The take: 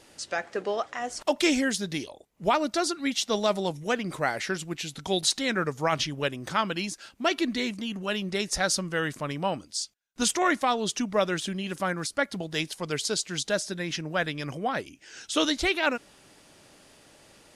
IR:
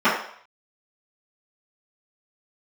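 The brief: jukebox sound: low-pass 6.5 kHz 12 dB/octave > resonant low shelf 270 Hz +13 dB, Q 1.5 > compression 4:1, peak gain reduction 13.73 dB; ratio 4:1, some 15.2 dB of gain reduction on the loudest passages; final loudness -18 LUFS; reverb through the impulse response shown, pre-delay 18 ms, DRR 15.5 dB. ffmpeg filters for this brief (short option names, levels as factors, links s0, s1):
-filter_complex "[0:a]acompressor=threshold=0.0126:ratio=4,asplit=2[s0][s1];[1:a]atrim=start_sample=2205,adelay=18[s2];[s1][s2]afir=irnorm=-1:irlink=0,volume=0.0133[s3];[s0][s3]amix=inputs=2:normalize=0,lowpass=6500,lowshelf=f=270:t=q:w=1.5:g=13,acompressor=threshold=0.0112:ratio=4,volume=15.8"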